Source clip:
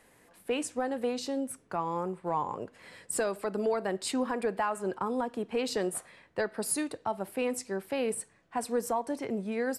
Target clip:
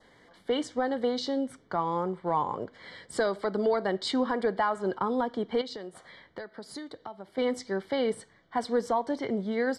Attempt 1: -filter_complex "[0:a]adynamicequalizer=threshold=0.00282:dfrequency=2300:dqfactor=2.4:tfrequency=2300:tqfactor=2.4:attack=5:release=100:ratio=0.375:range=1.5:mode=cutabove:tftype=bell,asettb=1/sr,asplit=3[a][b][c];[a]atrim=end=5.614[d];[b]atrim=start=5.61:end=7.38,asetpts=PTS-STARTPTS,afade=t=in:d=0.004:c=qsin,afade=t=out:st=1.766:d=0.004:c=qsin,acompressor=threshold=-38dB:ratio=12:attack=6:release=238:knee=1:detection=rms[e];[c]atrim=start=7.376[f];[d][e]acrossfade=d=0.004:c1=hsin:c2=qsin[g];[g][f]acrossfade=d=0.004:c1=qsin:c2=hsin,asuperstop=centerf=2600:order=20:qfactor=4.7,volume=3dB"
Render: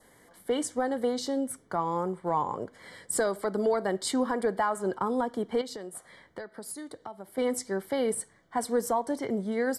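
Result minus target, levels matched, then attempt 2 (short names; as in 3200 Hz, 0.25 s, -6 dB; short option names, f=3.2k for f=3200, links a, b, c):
4000 Hz band -3.0 dB
-filter_complex "[0:a]adynamicequalizer=threshold=0.00282:dfrequency=2300:dqfactor=2.4:tfrequency=2300:tqfactor=2.4:attack=5:release=100:ratio=0.375:range=1.5:mode=cutabove:tftype=bell,lowpass=f=4k:t=q:w=1.6,asettb=1/sr,asplit=3[a][b][c];[a]atrim=end=5.614[d];[b]atrim=start=5.61:end=7.38,asetpts=PTS-STARTPTS,afade=t=in:d=0.004:c=qsin,afade=t=out:st=1.766:d=0.004:c=qsin,acompressor=threshold=-38dB:ratio=12:attack=6:release=238:knee=1:detection=rms[e];[c]atrim=start=7.376[f];[d][e]acrossfade=d=0.004:c1=hsin:c2=qsin[g];[g][f]acrossfade=d=0.004:c1=qsin:c2=hsin,asuperstop=centerf=2600:order=20:qfactor=4.7,volume=3dB"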